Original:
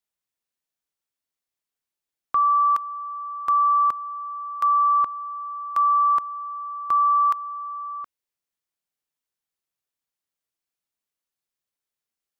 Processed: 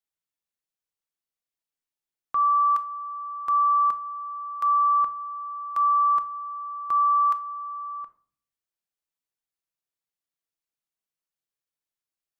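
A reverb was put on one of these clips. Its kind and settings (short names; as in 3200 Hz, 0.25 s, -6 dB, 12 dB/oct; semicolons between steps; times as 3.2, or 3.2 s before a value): shoebox room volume 520 m³, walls furnished, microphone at 0.67 m; gain -5.5 dB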